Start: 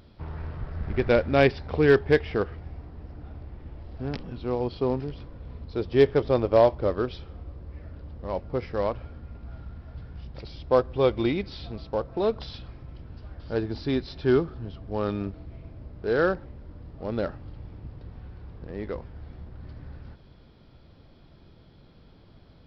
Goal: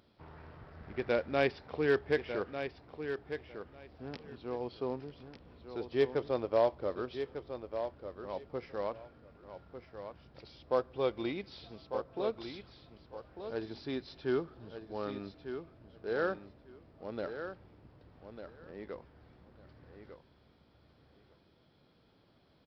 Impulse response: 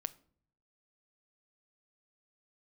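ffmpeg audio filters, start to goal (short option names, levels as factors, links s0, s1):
-filter_complex "[0:a]highpass=f=280:p=1,asplit=2[s0][s1];[s1]aecho=0:1:1198|2396:0.355|0.0568[s2];[s0][s2]amix=inputs=2:normalize=0,volume=0.376"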